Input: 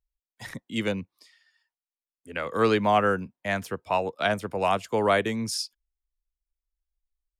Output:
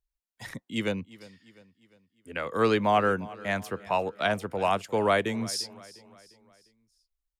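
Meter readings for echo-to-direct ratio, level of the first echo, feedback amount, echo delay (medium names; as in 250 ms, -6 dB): -19.0 dB, -20.0 dB, 48%, 351 ms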